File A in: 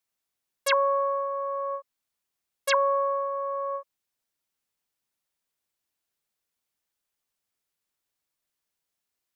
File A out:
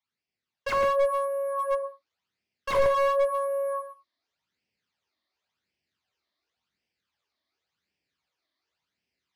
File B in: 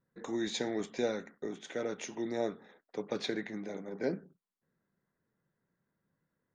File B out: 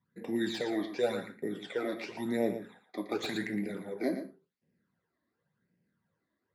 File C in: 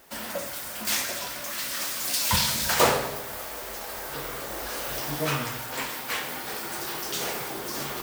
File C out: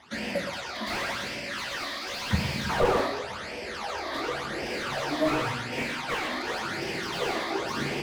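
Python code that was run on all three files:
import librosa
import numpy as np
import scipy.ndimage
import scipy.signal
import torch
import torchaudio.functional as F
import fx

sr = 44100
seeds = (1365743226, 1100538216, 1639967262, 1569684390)

p1 = (np.kron(scipy.signal.resample_poly(x, 1, 4), np.eye(4)[0]) * 4)[:len(x)]
p2 = scipy.signal.sosfilt(scipy.signal.butter(4, 5100.0, 'lowpass', fs=sr, output='sos'), p1)
p3 = fx.phaser_stages(p2, sr, stages=12, low_hz=140.0, high_hz=1300.0, hz=0.91, feedback_pct=30)
p4 = scipy.signal.sosfilt(scipy.signal.butter(4, 75.0, 'highpass', fs=sr, output='sos'), p3)
p5 = fx.rider(p4, sr, range_db=3, speed_s=2.0)
p6 = p5 + fx.echo_single(p5, sr, ms=116, db=-10.0, dry=0)
p7 = fx.rev_gated(p6, sr, seeds[0], gate_ms=120, shape='falling', drr_db=8.5)
p8 = fx.slew_limit(p7, sr, full_power_hz=42.0)
y = p8 * librosa.db_to_amplitude(4.5)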